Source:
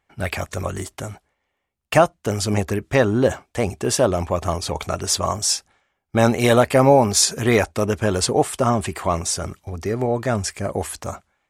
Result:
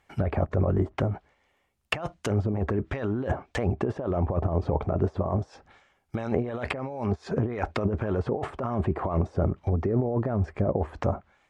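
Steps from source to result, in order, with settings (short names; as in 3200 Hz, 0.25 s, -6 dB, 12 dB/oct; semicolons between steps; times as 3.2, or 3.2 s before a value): negative-ratio compressor -26 dBFS, ratio -1; treble ducked by the level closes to 670 Hz, closed at -21 dBFS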